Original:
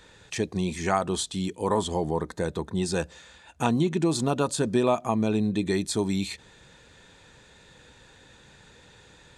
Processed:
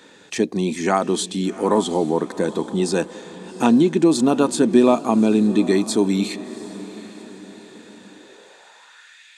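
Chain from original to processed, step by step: echo that smears into a reverb 749 ms, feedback 45%, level -16 dB; high-pass sweep 250 Hz -> 2.2 kHz, 8.12–9.23 s; trim +4.5 dB

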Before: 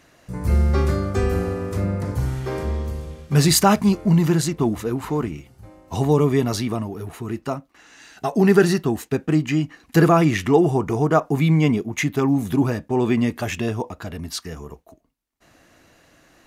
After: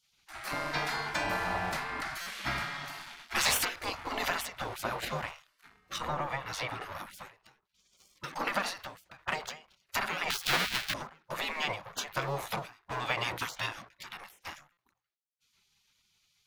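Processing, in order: 10.30–10.94 s: square wave that keeps the level; hum notches 60/120/180/240 Hz; 2.89–3.65 s: flutter echo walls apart 6.4 m, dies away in 0.3 s; waveshaping leveller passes 2; graphic EQ 125/250/500/1000/2000/4000/8000 Hz -10/+5/+12/+10/+5/+7/-3 dB; compression 10:1, threshold -4 dBFS, peak gain reduction 13.5 dB; 5.98–6.81 s: treble shelf 3 kHz -11.5 dB; spectral gate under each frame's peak -20 dB weak; buffer glitch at 2.21/14.72 s, samples 256, times 8; endings held to a fixed fall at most 150 dB/s; trim -8.5 dB

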